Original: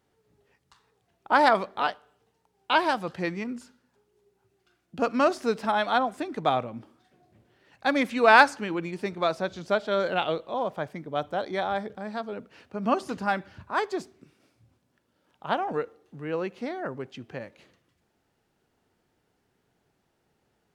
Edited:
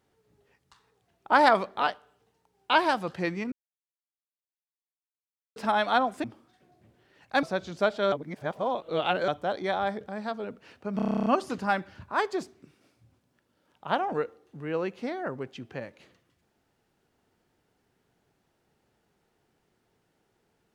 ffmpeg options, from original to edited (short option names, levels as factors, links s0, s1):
-filter_complex "[0:a]asplit=17[s0][s1][s2][s3][s4][s5][s6][s7][s8][s9][s10][s11][s12][s13][s14][s15][s16];[s0]atrim=end=3.52,asetpts=PTS-STARTPTS,afade=t=out:st=3.516:d=0.004:c=hsin[s17];[s1]atrim=start=3.52:end=5.56,asetpts=PTS-STARTPTS,volume=0[s18];[s2]atrim=start=5.56:end=6.242,asetpts=PTS-STARTPTS,afade=t=in:d=0.004:c=hsin[s19];[s3]atrim=start=6.748:end=7.942[s20];[s4]atrim=start=9.318:end=10.012[s21];[s5]atrim=start=10.008:end=11.172,asetpts=PTS-STARTPTS,areverse[s22];[s6]atrim=start=11.168:end=12.882[s23];[s7]atrim=start=12.848:end=12.882[s24];[s8]atrim=start=12.848:end=12.882[s25];[s9]atrim=start=12.848:end=12.882[s26];[s10]atrim=start=12.848:end=12.882[s27];[s11]atrim=start=12.848:end=12.882[s28];[s12]atrim=start=12.848:end=12.882[s29];[s13]atrim=start=12.848:end=12.882[s30];[s14]atrim=start=12.848:end=12.882[s31];[s15]atrim=start=12.848:end=12.882[s32];[s16]atrim=start=12.848[s33];[s17][s18][s19]concat=n=3:v=0:a=1[s34];[s34][s20]acrossfade=d=0.004:c1=hsin:c2=hsin[s35];[s35][s21]acrossfade=d=0.004:c1=hsin:c2=hsin[s36];[s36][s22]acrossfade=d=0.004:c1=hsin:c2=hsin[s37];[s37][s23]acrossfade=d=0.004:c1=hsin:c2=hsin[s38];[s38][s24]acrossfade=d=0.004:c1=hsin:c2=hsin[s39];[s39][s25]acrossfade=d=0.004:c1=hsin:c2=hsin[s40];[s40][s26]acrossfade=d=0.004:c1=hsin:c2=hsin[s41];[s41][s27]acrossfade=d=0.004:c1=hsin:c2=hsin[s42];[s42][s28]acrossfade=d=0.004:c1=hsin:c2=hsin[s43];[s43][s29]acrossfade=d=0.004:c1=hsin:c2=hsin[s44];[s44][s30]acrossfade=d=0.004:c1=hsin:c2=hsin[s45];[s45][s31]acrossfade=d=0.004:c1=hsin:c2=hsin[s46];[s46][s32]acrossfade=d=0.004:c1=hsin:c2=hsin[s47];[s47][s33]acrossfade=d=0.004:c1=hsin:c2=hsin"